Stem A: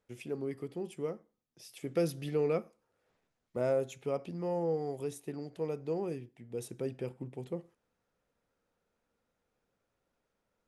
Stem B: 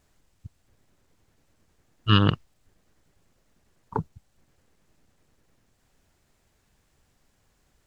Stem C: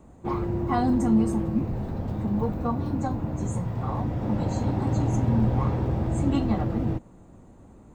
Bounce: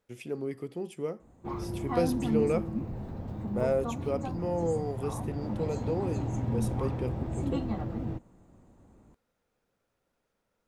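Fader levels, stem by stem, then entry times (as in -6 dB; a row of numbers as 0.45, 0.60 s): +2.5 dB, off, -8.0 dB; 0.00 s, off, 1.20 s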